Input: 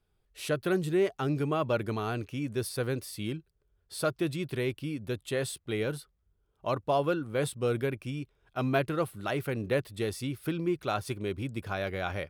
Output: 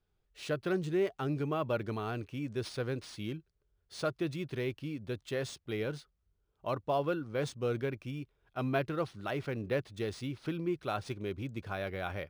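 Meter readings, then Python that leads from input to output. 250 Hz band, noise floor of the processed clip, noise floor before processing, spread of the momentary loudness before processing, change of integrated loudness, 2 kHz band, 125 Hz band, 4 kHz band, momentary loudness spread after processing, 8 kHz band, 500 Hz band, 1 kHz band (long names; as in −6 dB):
−4.0 dB, −78 dBFS, −74 dBFS, 8 LU, −4.0 dB, −4.5 dB, −4.0 dB, −4.5 dB, 9 LU, −9.5 dB, −4.0 dB, −4.0 dB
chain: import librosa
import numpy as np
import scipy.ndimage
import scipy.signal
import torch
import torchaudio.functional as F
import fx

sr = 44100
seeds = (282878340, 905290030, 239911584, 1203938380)

y = np.interp(np.arange(len(x)), np.arange(len(x))[::3], x[::3])
y = y * librosa.db_to_amplitude(-4.0)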